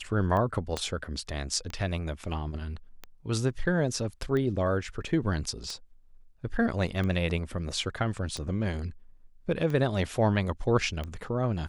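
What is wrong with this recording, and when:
tick 45 rpm -22 dBFS
0.77 pop -16 dBFS

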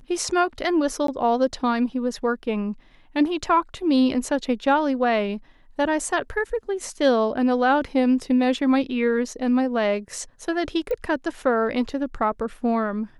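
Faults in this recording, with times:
1.07–1.08 gap 13 ms
10.91 pop -18 dBFS

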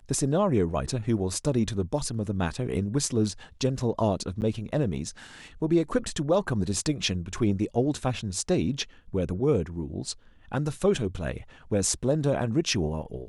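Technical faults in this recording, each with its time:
4.41–4.42 gap 9.1 ms

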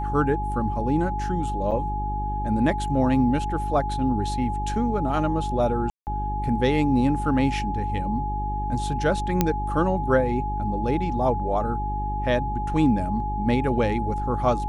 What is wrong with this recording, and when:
hum 50 Hz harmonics 8 -29 dBFS
tone 840 Hz -28 dBFS
1.71–1.72 gap 7 ms
5.9–6.07 gap 0.169 s
9.41 pop -5 dBFS

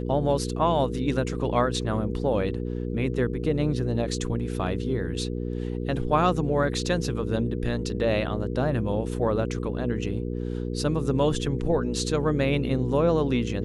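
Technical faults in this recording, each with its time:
hum 60 Hz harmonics 8 -30 dBFS

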